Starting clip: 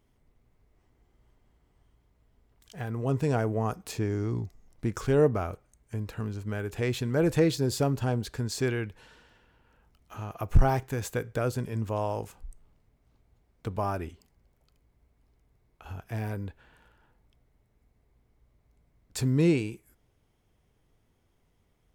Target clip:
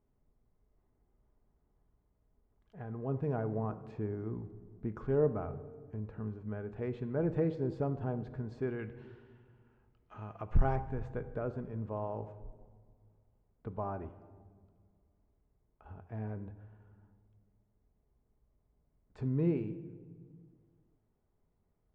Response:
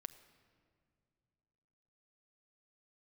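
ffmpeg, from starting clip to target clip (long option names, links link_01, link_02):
-filter_complex "[0:a]asetnsamples=nb_out_samples=441:pad=0,asendcmd='8.79 lowpass f 2200;10.76 lowpass f 1200',lowpass=1200[link_01];[1:a]atrim=start_sample=2205,asetrate=57330,aresample=44100[link_02];[link_01][link_02]afir=irnorm=-1:irlink=0"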